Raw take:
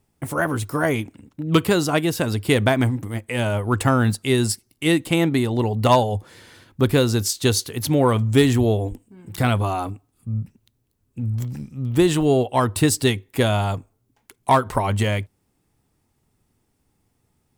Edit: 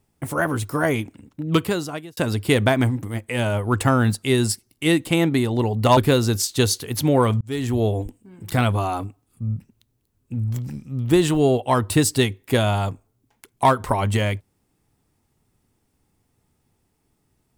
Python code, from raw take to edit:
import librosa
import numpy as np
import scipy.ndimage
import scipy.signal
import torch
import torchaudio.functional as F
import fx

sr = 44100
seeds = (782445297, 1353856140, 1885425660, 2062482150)

y = fx.edit(x, sr, fx.fade_out_span(start_s=1.41, length_s=0.76),
    fx.cut(start_s=5.97, length_s=0.86),
    fx.fade_in_span(start_s=8.27, length_s=0.5), tone=tone)